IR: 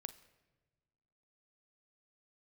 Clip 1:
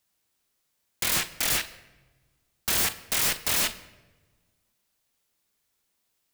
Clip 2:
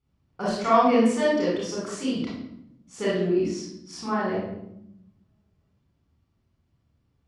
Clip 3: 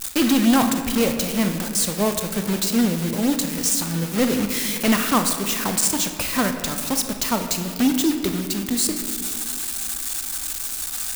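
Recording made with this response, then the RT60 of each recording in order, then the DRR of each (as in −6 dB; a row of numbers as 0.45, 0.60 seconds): 1; 1.3, 0.80, 2.5 seconds; 11.5, −7.5, 6.0 decibels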